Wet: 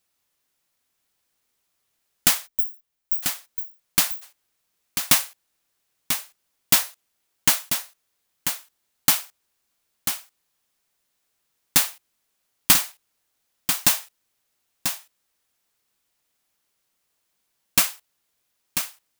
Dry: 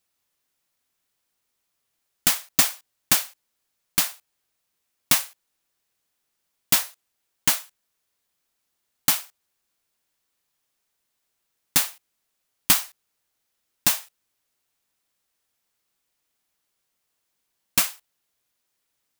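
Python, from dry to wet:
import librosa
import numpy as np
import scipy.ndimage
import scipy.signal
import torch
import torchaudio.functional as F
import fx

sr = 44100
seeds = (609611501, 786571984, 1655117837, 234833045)

p1 = fx.cheby2_bandstop(x, sr, low_hz=330.0, high_hz=7200.0, order=4, stop_db=80, at=(2.46, 3.22), fade=0.02)
p2 = p1 + fx.echo_single(p1, sr, ms=991, db=-7.5, dry=0)
y = F.gain(torch.from_numpy(p2), 2.0).numpy()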